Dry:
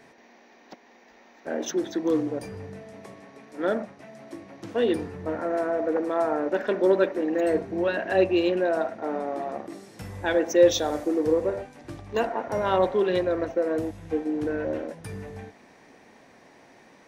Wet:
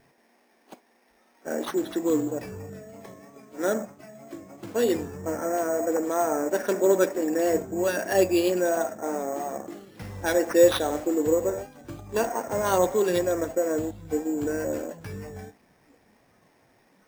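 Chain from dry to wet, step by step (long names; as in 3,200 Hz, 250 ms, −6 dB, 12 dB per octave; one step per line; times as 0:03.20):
pitch vibrato 3.1 Hz 50 cents
decimation without filtering 6×
noise reduction from a noise print of the clip's start 9 dB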